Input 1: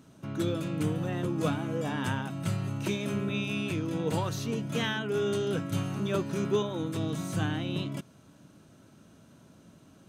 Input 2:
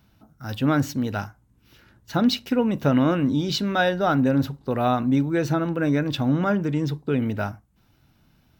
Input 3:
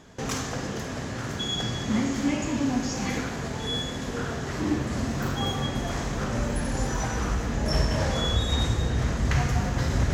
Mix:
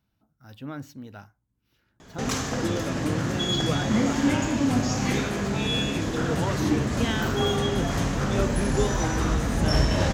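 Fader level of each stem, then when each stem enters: +1.0 dB, -15.5 dB, +2.0 dB; 2.25 s, 0.00 s, 2.00 s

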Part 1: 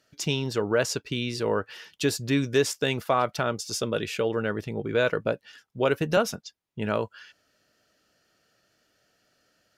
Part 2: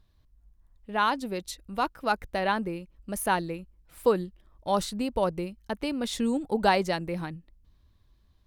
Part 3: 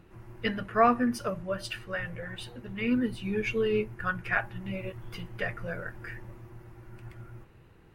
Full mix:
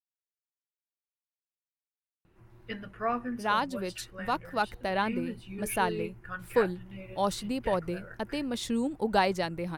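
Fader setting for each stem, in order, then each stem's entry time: mute, -2.5 dB, -8.5 dB; mute, 2.50 s, 2.25 s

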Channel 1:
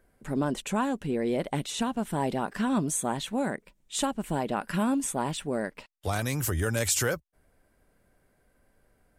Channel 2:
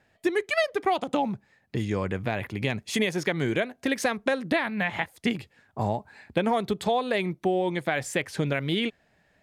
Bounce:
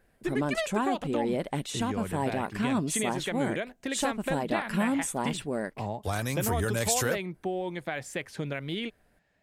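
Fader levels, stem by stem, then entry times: -1.5 dB, -7.0 dB; 0.00 s, 0.00 s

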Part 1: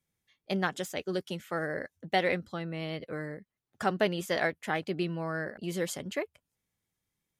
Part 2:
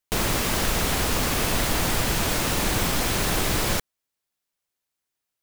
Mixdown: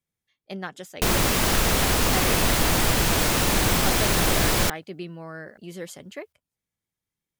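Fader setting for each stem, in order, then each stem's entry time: -4.0 dB, +2.5 dB; 0.00 s, 0.90 s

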